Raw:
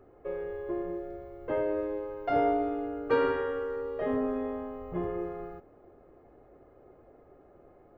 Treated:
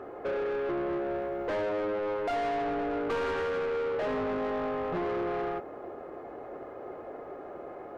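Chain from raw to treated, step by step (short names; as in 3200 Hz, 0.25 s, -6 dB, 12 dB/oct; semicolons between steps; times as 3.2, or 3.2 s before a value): half-wave gain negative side -3 dB; compressor 2.5:1, threshold -37 dBFS, peak gain reduction 10.5 dB; overdrive pedal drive 28 dB, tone 2000 Hz, clips at -23.5 dBFS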